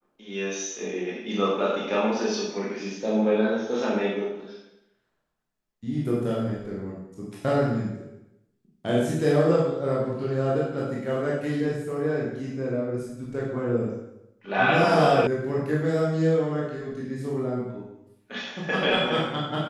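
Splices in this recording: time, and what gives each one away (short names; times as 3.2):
15.27 sound cut off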